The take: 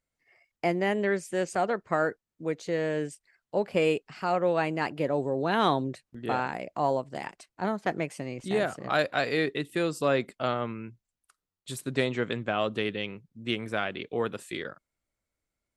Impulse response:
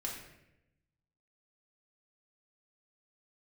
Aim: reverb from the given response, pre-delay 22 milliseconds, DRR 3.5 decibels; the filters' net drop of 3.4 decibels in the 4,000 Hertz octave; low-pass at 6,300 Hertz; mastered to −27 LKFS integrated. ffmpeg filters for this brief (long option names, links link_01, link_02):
-filter_complex "[0:a]lowpass=6300,equalizer=frequency=4000:width_type=o:gain=-4,asplit=2[link_01][link_02];[1:a]atrim=start_sample=2205,adelay=22[link_03];[link_02][link_03]afir=irnorm=-1:irlink=0,volume=-4dB[link_04];[link_01][link_04]amix=inputs=2:normalize=0,volume=1dB"